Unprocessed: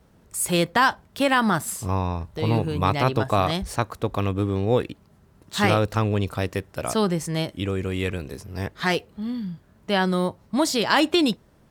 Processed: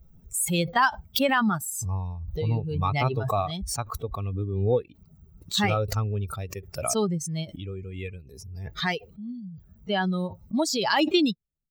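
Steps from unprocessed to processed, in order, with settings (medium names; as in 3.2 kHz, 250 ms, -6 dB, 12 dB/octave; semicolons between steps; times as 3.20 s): expander on every frequency bin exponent 2; swell ahead of each attack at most 40 dB/s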